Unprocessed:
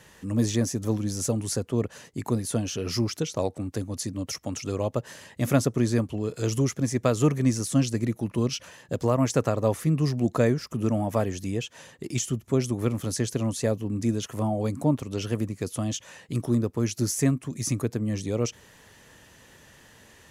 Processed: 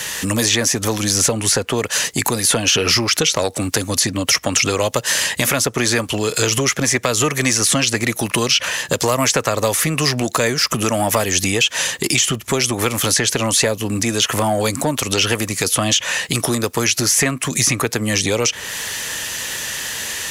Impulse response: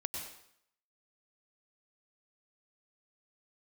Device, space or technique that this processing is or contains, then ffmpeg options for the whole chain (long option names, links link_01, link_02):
mastering chain: -filter_complex "[0:a]equalizer=frequency=490:width_type=o:width=0.77:gain=2,acrossover=split=450|3100[link_01][link_02][link_03];[link_01]acompressor=threshold=-31dB:ratio=4[link_04];[link_02]acompressor=threshold=-31dB:ratio=4[link_05];[link_03]acompressor=threshold=-48dB:ratio=4[link_06];[link_04][link_05][link_06]amix=inputs=3:normalize=0,acompressor=threshold=-34dB:ratio=2,asoftclip=type=tanh:threshold=-23dB,tiltshelf=frequency=1200:gain=-9.5,alimiter=level_in=26.5dB:limit=-1dB:release=50:level=0:latency=1,volume=-3dB"